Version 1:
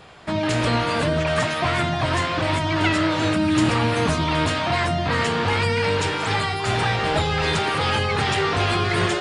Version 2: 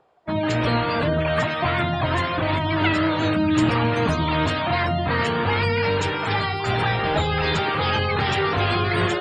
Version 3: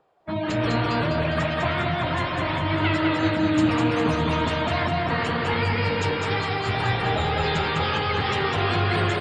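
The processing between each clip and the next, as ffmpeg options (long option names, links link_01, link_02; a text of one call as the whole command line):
ffmpeg -i in.wav -filter_complex "[0:a]afftdn=noise_reduction=27:noise_floor=-31,acrossover=split=340|1000|2400[link_01][link_02][link_03][link_04];[link_02]acompressor=mode=upward:threshold=-49dB:ratio=2.5[link_05];[link_01][link_05][link_03][link_04]amix=inputs=4:normalize=0" out.wav
ffmpeg -i in.wav -filter_complex "[0:a]flanger=delay=3.7:depth=9:regen=-44:speed=2:shape=triangular,asplit=2[link_01][link_02];[link_02]aecho=0:1:203|406|609|812|1015|1218|1421:0.668|0.348|0.181|0.094|0.0489|0.0254|0.0132[link_03];[link_01][link_03]amix=inputs=2:normalize=0" out.wav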